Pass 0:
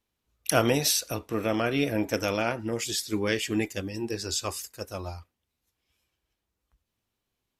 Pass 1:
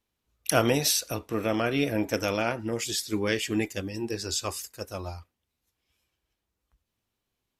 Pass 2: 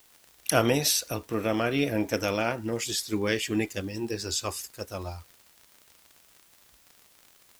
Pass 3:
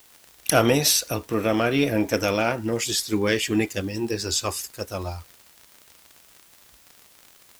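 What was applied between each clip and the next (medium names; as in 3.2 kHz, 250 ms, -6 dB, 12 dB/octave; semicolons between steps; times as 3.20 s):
no audible change
word length cut 10-bit, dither triangular; crackle 71 per s -39 dBFS
single-diode clipper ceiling -7 dBFS; trim +5.5 dB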